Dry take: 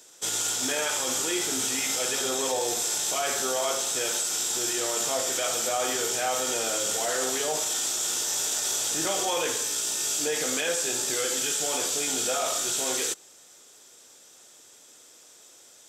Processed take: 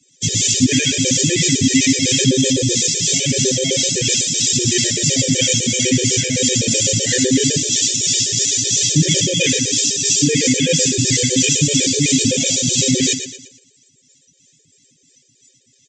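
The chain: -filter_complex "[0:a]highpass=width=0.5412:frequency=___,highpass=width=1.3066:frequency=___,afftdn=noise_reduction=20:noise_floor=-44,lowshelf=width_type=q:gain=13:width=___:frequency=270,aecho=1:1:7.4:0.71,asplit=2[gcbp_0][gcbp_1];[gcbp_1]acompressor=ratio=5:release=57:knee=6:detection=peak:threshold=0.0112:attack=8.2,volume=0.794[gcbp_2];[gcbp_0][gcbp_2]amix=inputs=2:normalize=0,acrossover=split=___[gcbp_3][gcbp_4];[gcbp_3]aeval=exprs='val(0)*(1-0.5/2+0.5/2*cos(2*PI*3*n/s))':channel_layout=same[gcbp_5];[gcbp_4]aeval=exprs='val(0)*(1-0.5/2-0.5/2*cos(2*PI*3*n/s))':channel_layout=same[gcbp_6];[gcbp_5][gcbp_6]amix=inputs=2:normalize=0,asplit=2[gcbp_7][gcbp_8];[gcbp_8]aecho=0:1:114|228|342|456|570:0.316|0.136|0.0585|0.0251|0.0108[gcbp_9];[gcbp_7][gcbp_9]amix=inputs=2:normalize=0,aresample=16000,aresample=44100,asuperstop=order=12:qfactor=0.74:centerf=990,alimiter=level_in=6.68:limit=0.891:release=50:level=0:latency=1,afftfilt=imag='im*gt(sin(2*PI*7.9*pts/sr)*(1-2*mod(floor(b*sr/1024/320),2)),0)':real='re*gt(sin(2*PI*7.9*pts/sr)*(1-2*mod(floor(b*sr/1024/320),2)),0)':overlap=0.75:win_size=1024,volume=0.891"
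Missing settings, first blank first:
50, 50, 1.5, 490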